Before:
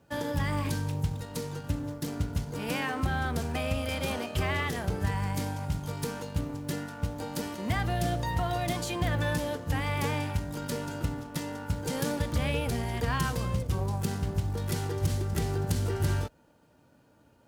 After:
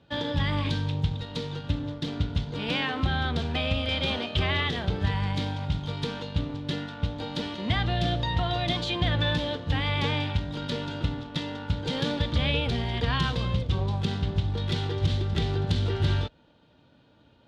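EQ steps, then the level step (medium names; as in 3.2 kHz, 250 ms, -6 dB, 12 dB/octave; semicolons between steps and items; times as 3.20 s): resonant low-pass 3.6 kHz, resonance Q 4.8; bass shelf 330 Hz +3.5 dB; 0.0 dB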